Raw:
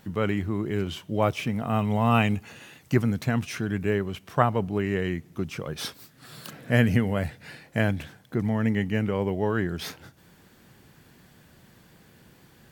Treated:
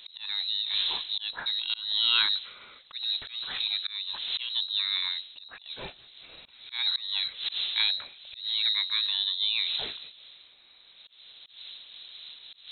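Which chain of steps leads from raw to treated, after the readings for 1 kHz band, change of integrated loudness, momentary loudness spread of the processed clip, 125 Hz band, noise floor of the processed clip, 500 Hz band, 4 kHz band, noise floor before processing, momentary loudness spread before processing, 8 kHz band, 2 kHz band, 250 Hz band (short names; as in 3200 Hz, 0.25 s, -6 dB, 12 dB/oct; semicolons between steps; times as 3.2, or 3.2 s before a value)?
-15.0 dB, -0.5 dB, 19 LU, under -35 dB, -56 dBFS, -26.5 dB, +16.0 dB, -57 dBFS, 12 LU, under -35 dB, -4.5 dB, under -30 dB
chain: wind noise 580 Hz -36 dBFS; notches 60/120/180 Hz; inverted band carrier 4000 Hz; auto swell 0.232 s; gain -3 dB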